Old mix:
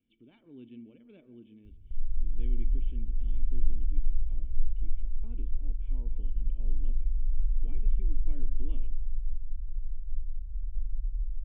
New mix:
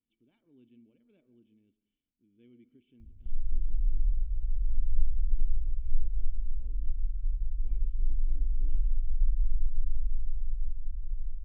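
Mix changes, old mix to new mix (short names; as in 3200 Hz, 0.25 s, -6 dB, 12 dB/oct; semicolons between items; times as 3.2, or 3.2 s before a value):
speech -11.5 dB; background: entry +1.35 s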